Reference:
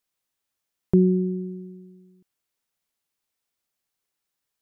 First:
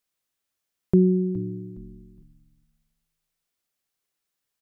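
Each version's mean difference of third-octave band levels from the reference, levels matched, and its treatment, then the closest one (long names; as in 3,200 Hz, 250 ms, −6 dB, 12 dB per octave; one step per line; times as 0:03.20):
2.5 dB: parametric band 900 Hz −3 dB 0.33 octaves
echo with shifted repeats 415 ms, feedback 31%, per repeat −70 Hz, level −17.5 dB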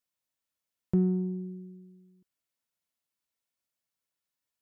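1.0 dB: in parallel at −10.5 dB: soft clipping −21.5 dBFS, distortion −8 dB
on the sum: notch comb filter 400 Hz
level −7.5 dB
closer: second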